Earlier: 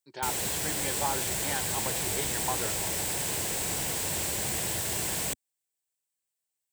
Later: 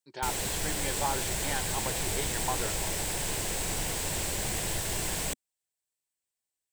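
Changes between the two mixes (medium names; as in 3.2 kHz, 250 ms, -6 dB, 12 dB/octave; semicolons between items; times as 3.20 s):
background: add treble shelf 11 kHz -6.5 dB; master: remove high-pass 80 Hz 12 dB/octave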